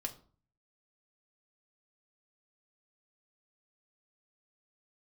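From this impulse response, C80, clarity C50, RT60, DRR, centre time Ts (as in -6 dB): 19.0 dB, 15.0 dB, 0.45 s, 2.0 dB, 8 ms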